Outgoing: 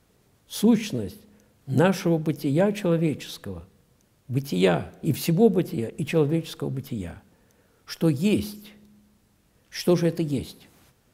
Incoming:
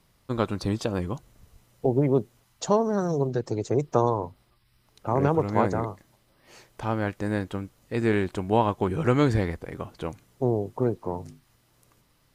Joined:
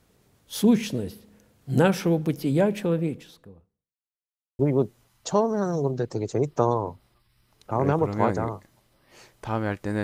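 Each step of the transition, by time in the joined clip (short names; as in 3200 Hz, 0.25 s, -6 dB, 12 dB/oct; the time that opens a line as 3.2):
outgoing
2.5–3.98 studio fade out
3.98–4.59 mute
4.59 switch to incoming from 1.95 s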